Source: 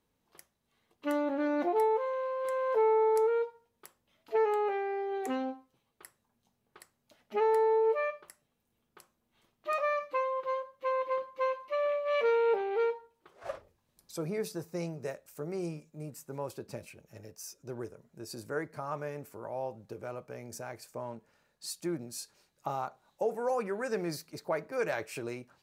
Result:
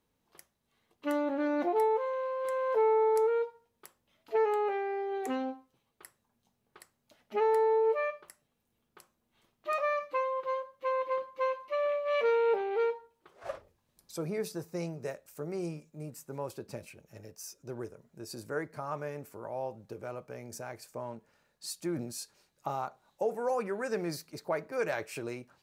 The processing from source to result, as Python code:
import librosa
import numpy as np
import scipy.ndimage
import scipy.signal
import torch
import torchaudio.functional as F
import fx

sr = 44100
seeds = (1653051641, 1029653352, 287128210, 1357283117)

y = fx.sustainer(x, sr, db_per_s=65.0, at=(21.81, 22.22), fade=0.02)